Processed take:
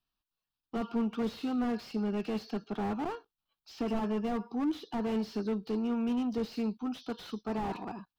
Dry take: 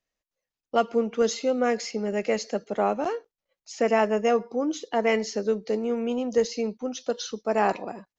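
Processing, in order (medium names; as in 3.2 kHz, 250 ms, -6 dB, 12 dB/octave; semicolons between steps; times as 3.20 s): static phaser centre 2 kHz, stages 6; slew-rate limiter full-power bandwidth 13 Hz; trim +1.5 dB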